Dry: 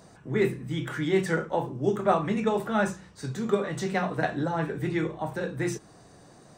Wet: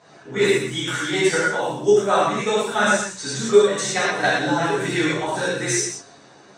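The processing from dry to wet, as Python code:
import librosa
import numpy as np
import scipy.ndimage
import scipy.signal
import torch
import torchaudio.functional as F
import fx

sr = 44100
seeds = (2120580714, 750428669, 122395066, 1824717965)

p1 = scipy.signal.sosfilt(scipy.signal.butter(2, 110.0, 'highpass', fs=sr, output='sos'), x)
p2 = fx.high_shelf(p1, sr, hz=2100.0, db=7.0)
p3 = fx.level_steps(p2, sr, step_db=23)
p4 = p2 + (p3 * librosa.db_to_amplitude(1.5))
p5 = fx.rev_gated(p4, sr, seeds[0], gate_ms=140, shape='flat', drr_db=-6.0)
p6 = fx.env_lowpass(p5, sr, base_hz=2500.0, full_db=-17.5)
p7 = fx.bass_treble(p6, sr, bass_db=-7, treble_db=10)
p8 = fx.notch(p7, sr, hz=4800.0, q=14.0)
p9 = p8 + fx.echo_single(p8, sr, ms=123, db=-9.5, dry=0)
p10 = fx.rider(p9, sr, range_db=4, speed_s=0.5)
p11 = scipy.signal.sosfilt(scipy.signal.butter(2, 7100.0, 'lowpass', fs=sr, output='sos'), p10)
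y = fx.ensemble(p11, sr)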